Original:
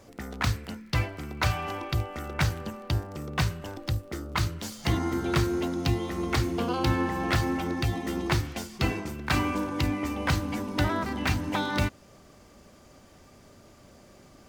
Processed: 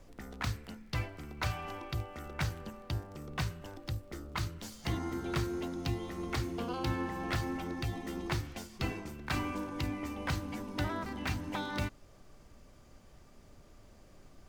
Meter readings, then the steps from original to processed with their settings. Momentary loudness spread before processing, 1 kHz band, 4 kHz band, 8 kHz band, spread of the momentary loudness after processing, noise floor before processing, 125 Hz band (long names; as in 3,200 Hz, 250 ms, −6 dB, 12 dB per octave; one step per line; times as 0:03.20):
6 LU, −8.5 dB, −8.5 dB, −8.5 dB, 6 LU, −54 dBFS, −8.5 dB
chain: background noise brown −48 dBFS
level −8.5 dB